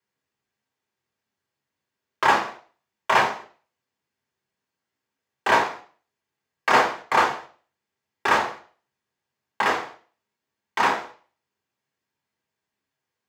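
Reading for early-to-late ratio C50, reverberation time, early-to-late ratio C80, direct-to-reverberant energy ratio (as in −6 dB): 11.5 dB, 0.40 s, 16.0 dB, −2.0 dB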